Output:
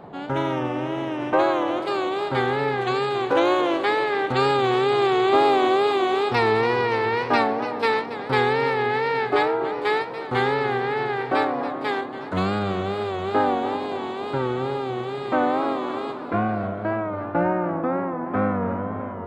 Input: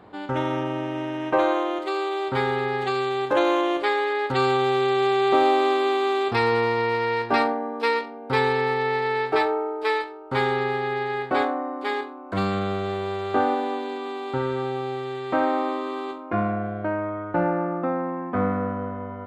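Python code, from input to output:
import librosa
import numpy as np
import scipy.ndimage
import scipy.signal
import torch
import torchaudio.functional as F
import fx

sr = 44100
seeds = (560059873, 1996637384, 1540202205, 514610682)

y = fx.wow_flutter(x, sr, seeds[0], rate_hz=2.1, depth_cents=91.0)
y = fx.dmg_noise_band(y, sr, seeds[1], low_hz=110.0, high_hz=900.0, level_db=-44.0)
y = fx.echo_warbled(y, sr, ms=283, feedback_pct=63, rate_hz=2.8, cents=137, wet_db=-13.0)
y = F.gain(torch.from_numpy(y), 1.0).numpy()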